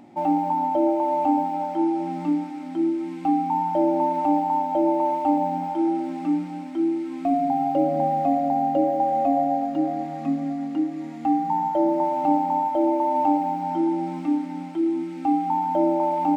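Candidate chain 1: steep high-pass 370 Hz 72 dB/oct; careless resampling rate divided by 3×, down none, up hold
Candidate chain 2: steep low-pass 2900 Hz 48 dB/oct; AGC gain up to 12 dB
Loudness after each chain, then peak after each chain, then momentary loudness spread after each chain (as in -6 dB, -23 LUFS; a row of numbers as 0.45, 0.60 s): -25.0, -14.5 LUFS; -12.5, -1.5 dBFS; 15, 4 LU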